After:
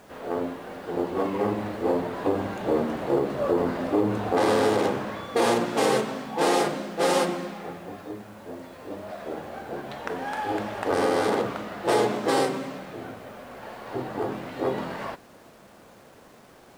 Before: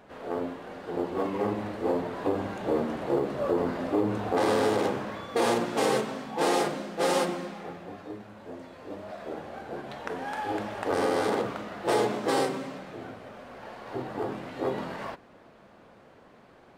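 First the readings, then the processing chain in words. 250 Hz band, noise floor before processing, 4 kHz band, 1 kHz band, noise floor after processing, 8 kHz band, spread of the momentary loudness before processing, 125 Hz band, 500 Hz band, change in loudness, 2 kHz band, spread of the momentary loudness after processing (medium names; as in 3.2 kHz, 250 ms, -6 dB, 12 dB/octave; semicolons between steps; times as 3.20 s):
+3.0 dB, -55 dBFS, +3.0 dB, +3.0 dB, -51 dBFS, +3.0 dB, 16 LU, +3.0 dB, +3.0 dB, +3.0 dB, +3.0 dB, 16 LU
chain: bit crusher 10-bit; trim +3 dB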